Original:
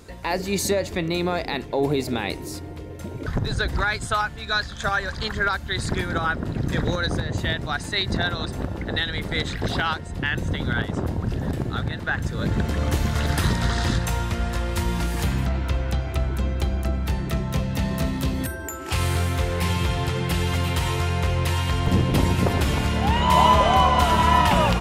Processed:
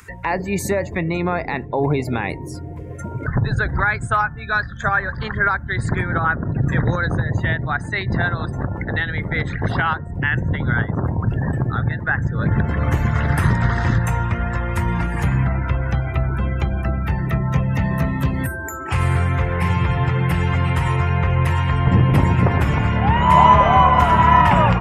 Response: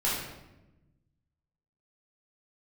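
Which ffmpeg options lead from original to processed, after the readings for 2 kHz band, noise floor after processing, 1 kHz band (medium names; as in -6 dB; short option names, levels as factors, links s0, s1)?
+5.0 dB, -31 dBFS, +5.5 dB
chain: -filter_complex "[0:a]afftdn=nr=25:nf=-37,equalizer=f=125:t=o:w=1:g=9,equalizer=f=1000:t=o:w=1:g=5,equalizer=f=2000:t=o:w=1:g=7,equalizer=f=4000:t=o:w=1:g=-12,acrossover=split=1200[s0][s1];[s1]acompressor=mode=upward:threshold=0.0447:ratio=2.5[s2];[s0][s2]amix=inputs=2:normalize=0"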